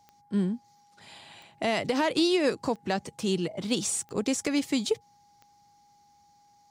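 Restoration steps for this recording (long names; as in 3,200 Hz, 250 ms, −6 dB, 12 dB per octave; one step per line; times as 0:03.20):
click removal
notch filter 820 Hz, Q 30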